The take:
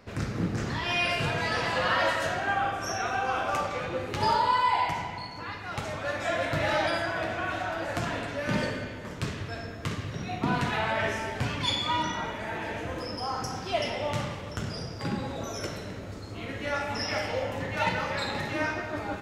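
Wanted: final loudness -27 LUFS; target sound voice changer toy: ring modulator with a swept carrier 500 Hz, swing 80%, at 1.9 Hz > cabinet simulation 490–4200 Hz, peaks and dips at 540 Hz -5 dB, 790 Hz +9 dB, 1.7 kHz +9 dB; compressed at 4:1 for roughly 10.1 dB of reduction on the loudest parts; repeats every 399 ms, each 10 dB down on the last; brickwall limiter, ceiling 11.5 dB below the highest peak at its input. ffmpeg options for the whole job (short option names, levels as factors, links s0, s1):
-af "acompressor=threshold=0.0224:ratio=4,alimiter=level_in=1.41:limit=0.0631:level=0:latency=1,volume=0.708,aecho=1:1:399|798|1197|1596:0.316|0.101|0.0324|0.0104,aeval=exprs='val(0)*sin(2*PI*500*n/s+500*0.8/1.9*sin(2*PI*1.9*n/s))':c=same,highpass=490,equalizer=f=540:t=q:w=4:g=-5,equalizer=f=790:t=q:w=4:g=9,equalizer=f=1700:t=q:w=4:g=9,lowpass=f=4200:w=0.5412,lowpass=f=4200:w=1.3066,volume=2.99"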